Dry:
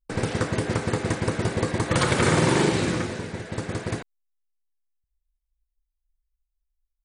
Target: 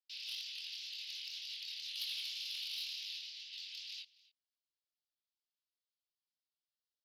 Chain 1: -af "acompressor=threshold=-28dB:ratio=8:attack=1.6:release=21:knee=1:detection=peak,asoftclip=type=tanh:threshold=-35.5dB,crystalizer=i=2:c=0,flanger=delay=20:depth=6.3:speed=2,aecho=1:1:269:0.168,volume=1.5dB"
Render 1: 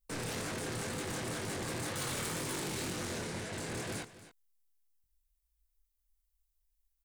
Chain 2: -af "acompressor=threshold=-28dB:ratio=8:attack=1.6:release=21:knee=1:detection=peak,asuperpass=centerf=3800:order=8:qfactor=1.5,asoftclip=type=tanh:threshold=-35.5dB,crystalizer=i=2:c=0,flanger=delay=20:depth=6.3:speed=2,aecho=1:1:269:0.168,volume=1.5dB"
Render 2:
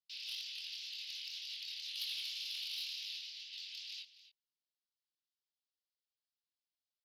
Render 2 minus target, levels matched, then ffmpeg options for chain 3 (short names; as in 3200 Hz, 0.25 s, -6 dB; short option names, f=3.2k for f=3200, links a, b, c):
echo-to-direct +6.5 dB
-af "acompressor=threshold=-28dB:ratio=8:attack=1.6:release=21:knee=1:detection=peak,asuperpass=centerf=3800:order=8:qfactor=1.5,asoftclip=type=tanh:threshold=-35.5dB,crystalizer=i=2:c=0,flanger=delay=20:depth=6.3:speed=2,aecho=1:1:269:0.0794,volume=1.5dB"